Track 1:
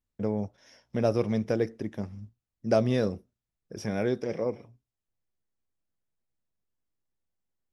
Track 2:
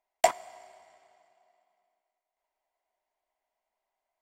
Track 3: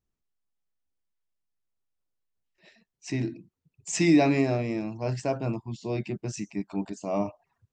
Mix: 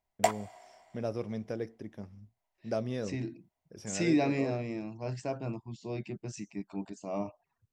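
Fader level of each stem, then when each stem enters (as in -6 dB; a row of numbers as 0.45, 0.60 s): -9.5, -3.5, -7.0 dB; 0.00, 0.00, 0.00 s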